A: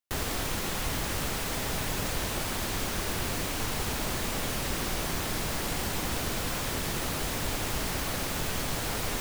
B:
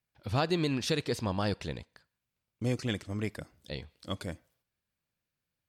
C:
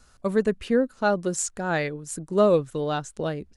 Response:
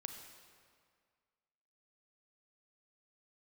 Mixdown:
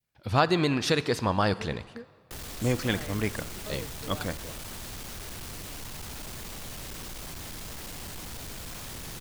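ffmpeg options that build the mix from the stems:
-filter_complex "[0:a]acrossover=split=170|3000[a][b][c];[b]acompressor=threshold=-37dB:ratio=6[d];[a][d][c]amix=inputs=3:normalize=0,asoftclip=type=hard:threshold=-33.5dB,adelay=2200,volume=-6.5dB,asplit=2[e][f];[f]volume=-4dB[g];[1:a]adynamicequalizer=threshold=0.00355:dfrequency=1200:dqfactor=0.79:tfrequency=1200:tqfactor=0.79:attack=5:release=100:ratio=0.375:range=3.5:mode=boostabove:tftype=bell,volume=1dB,asplit=3[h][i][j];[i]volume=-5.5dB[k];[2:a]alimiter=limit=-17dB:level=0:latency=1,adelay=1250,volume=-16.5dB[l];[j]apad=whole_len=212306[m];[l][m]sidechaingate=range=-33dB:threshold=-56dB:ratio=16:detection=peak[n];[3:a]atrim=start_sample=2205[o];[g][k]amix=inputs=2:normalize=0[p];[p][o]afir=irnorm=-1:irlink=0[q];[e][h][n][q]amix=inputs=4:normalize=0"

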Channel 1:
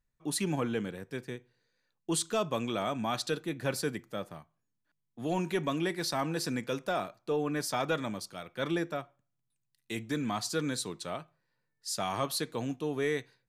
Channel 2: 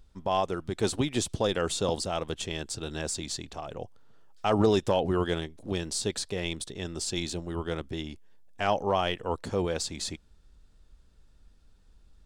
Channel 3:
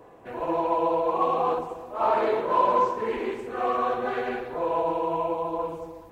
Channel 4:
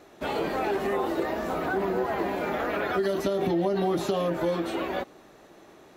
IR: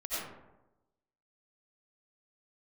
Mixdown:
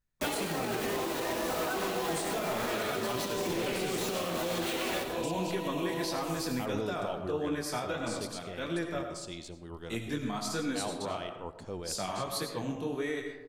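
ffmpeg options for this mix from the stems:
-filter_complex "[0:a]flanger=delay=17:depth=7.1:speed=1.6,volume=0dB,asplit=2[a][b];[b]volume=-7.5dB[c];[1:a]adelay=2150,volume=-12dB,asplit=2[d][e];[e]volume=-15dB[f];[2:a]alimiter=limit=-23dB:level=0:latency=1,acrossover=split=410|3000[g][h][i];[h]acompressor=threshold=-45dB:ratio=2[j];[g][j][i]amix=inputs=3:normalize=0,aexciter=amount=4.8:drive=7.6:freq=2.2k,adelay=550,volume=0.5dB[k];[3:a]highshelf=f=2.3k:g=11,acompressor=threshold=-29dB:ratio=10,acrusher=bits=5:mix=0:aa=0.000001,volume=0dB,asplit=2[l][m];[m]volume=-8.5dB[n];[4:a]atrim=start_sample=2205[o];[c][f][n]amix=inputs=3:normalize=0[p];[p][o]afir=irnorm=-1:irlink=0[q];[a][d][k][l][q]amix=inputs=5:normalize=0,alimiter=limit=-23dB:level=0:latency=1:release=193"

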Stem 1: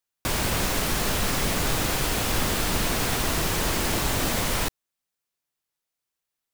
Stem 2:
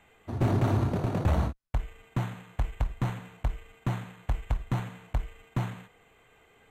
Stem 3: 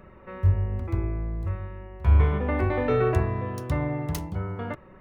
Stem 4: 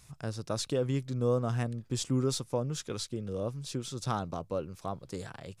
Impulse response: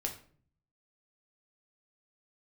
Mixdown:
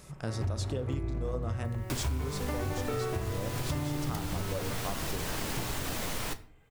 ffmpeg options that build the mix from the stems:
-filter_complex "[0:a]acompressor=mode=upward:threshold=-30dB:ratio=2.5,flanger=delay=0.6:depth=9.2:regen=-63:speed=1.2:shape=sinusoidal,adelay=1650,volume=-6.5dB,asplit=2[a][b];[b]volume=-6dB[c];[1:a]volume=-11.5dB,asplit=2[d][e];[e]volume=-7.5dB[f];[2:a]dynaudnorm=f=130:g=11:m=11.5dB,volume=-11dB,asplit=2[g][h];[h]volume=-3dB[i];[3:a]bandreject=f=60.71:t=h:w=4,bandreject=f=121.42:t=h:w=4,bandreject=f=182.13:t=h:w=4,bandreject=f=242.84:t=h:w=4,bandreject=f=303.55:t=h:w=4,bandreject=f=364.26:t=h:w=4,bandreject=f=424.97:t=h:w=4,bandreject=f=485.68:t=h:w=4,bandreject=f=546.39:t=h:w=4,bandreject=f=607.1:t=h:w=4,bandreject=f=667.81:t=h:w=4,bandreject=f=728.52:t=h:w=4,bandreject=f=789.23:t=h:w=4,bandreject=f=849.94:t=h:w=4,bandreject=f=910.65:t=h:w=4,bandreject=f=971.36:t=h:w=4,bandreject=f=1.03207k:t=h:w=4,bandreject=f=1.09278k:t=h:w=4,bandreject=f=1.15349k:t=h:w=4,bandreject=f=1.2142k:t=h:w=4,bandreject=f=1.27491k:t=h:w=4,bandreject=f=1.33562k:t=h:w=4,bandreject=f=1.39633k:t=h:w=4,bandreject=f=1.45704k:t=h:w=4,bandreject=f=1.51775k:t=h:w=4,bandreject=f=1.57846k:t=h:w=4,bandreject=f=1.63917k:t=h:w=4,bandreject=f=1.69988k:t=h:w=4,bandreject=f=1.76059k:t=h:w=4,bandreject=f=1.8213k:t=h:w=4,bandreject=f=1.88201k:t=h:w=4,bandreject=f=1.94272k:t=h:w=4,volume=1dB,asplit=3[j][k][l];[k]volume=-10.5dB[m];[l]apad=whole_len=295709[n];[d][n]sidechaincompress=threshold=-31dB:ratio=8:attack=16:release=257[o];[4:a]atrim=start_sample=2205[p];[c][f][i][m]amix=inputs=4:normalize=0[q];[q][p]afir=irnorm=-1:irlink=0[r];[a][o][g][j][r]amix=inputs=5:normalize=0,acompressor=threshold=-29dB:ratio=10"

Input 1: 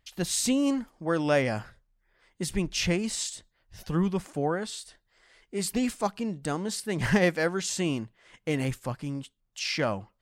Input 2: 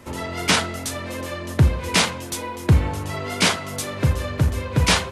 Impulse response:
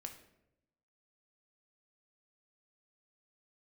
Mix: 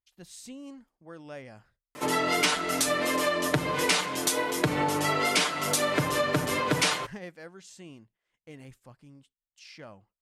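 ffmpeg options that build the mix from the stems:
-filter_complex "[0:a]agate=range=-7dB:threshold=-49dB:ratio=16:detection=peak,volume=-18.5dB[a];[1:a]highpass=260,aecho=1:1:6.7:0.79,acompressor=threshold=-23dB:ratio=1.5,adelay=1950,volume=2.5dB,asplit=2[b][c];[c]volume=-6dB[d];[2:a]atrim=start_sample=2205[e];[d][e]afir=irnorm=-1:irlink=0[f];[a][b][f]amix=inputs=3:normalize=0,acompressor=threshold=-22dB:ratio=6"

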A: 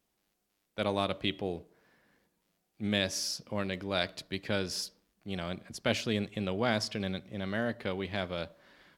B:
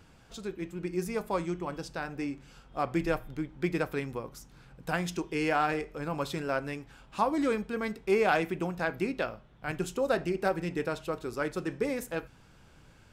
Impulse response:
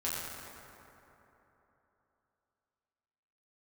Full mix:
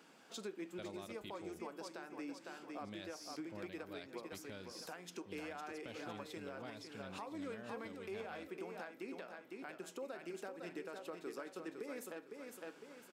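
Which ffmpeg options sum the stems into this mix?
-filter_complex "[0:a]volume=-14.5dB[a];[1:a]highpass=f=230:w=0.5412,highpass=f=230:w=1.3066,acompressor=threshold=-40dB:ratio=3,volume=-2dB,asplit=2[b][c];[c]volume=-6.5dB,aecho=0:1:506|1012|1518|2024|2530:1|0.38|0.144|0.0549|0.0209[d];[a][b][d]amix=inputs=3:normalize=0,alimiter=level_in=11.5dB:limit=-24dB:level=0:latency=1:release=404,volume=-11.5dB"

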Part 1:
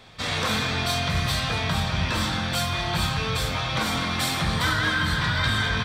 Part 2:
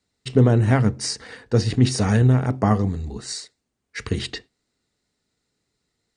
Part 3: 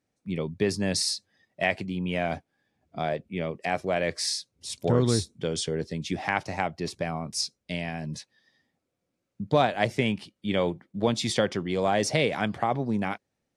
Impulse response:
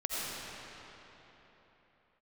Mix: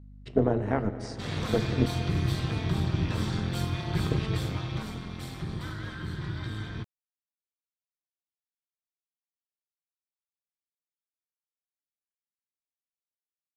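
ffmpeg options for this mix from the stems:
-filter_complex "[0:a]equalizer=f=120:w=0.45:g=15,adelay=1000,volume=-9.5dB,afade=t=out:st=4.46:d=0.53:silence=0.421697[a];[1:a]bandpass=f=560:t=q:w=0.57:csg=0,volume=-2.5dB,asplit=3[b][c][d];[b]atrim=end=1.86,asetpts=PTS-STARTPTS,afade=t=out:st=1.856:d=0.004:c=hsin[e];[c]atrim=start=1.86:end=3,asetpts=PTS-STARTPTS,volume=0[f];[d]atrim=start=3,asetpts=PTS-STARTPTS,afade=t=in:d=0.004:c=hsin[g];[e][f][g]concat=n=3:v=0:a=1,asplit=2[h][i];[i]volume=-17.5dB[j];[3:a]atrim=start_sample=2205[k];[j][k]afir=irnorm=-1:irlink=0[l];[a][h][l]amix=inputs=3:normalize=0,highpass=82,tremolo=f=210:d=0.71,aeval=exprs='val(0)+0.00447*(sin(2*PI*50*n/s)+sin(2*PI*2*50*n/s)/2+sin(2*PI*3*50*n/s)/3+sin(2*PI*4*50*n/s)/4+sin(2*PI*5*50*n/s)/5)':c=same"

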